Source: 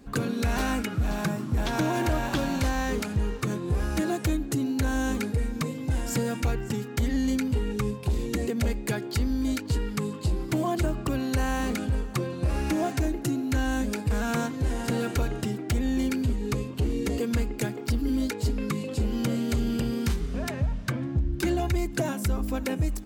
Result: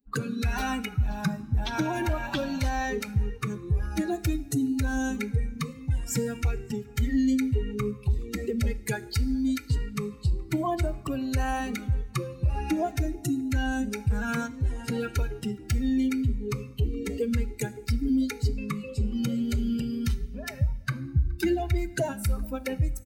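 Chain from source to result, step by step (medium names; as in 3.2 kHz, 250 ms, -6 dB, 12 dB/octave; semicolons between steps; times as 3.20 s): expander on every frequency bin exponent 2; echo from a far wall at 72 m, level -28 dB; two-slope reverb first 0.63 s, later 2.4 s, from -17 dB, DRR 13.5 dB; trim +4 dB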